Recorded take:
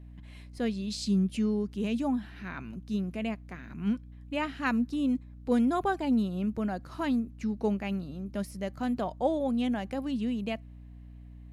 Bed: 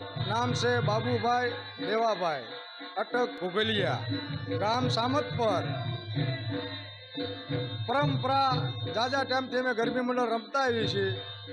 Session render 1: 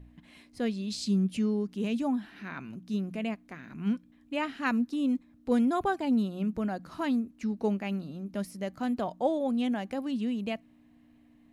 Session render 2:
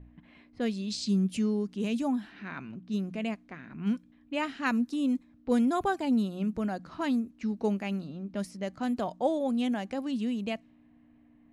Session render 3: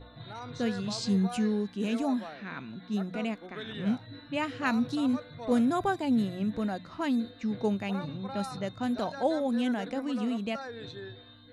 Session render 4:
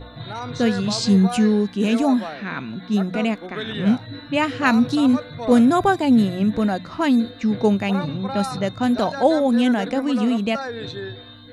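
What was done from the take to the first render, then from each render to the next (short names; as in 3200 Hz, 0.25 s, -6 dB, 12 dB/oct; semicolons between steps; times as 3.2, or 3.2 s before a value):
de-hum 60 Hz, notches 3
low-pass opened by the level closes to 2100 Hz, open at -26.5 dBFS; dynamic EQ 7500 Hz, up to +5 dB, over -60 dBFS, Q 0.86
add bed -13.5 dB
gain +11 dB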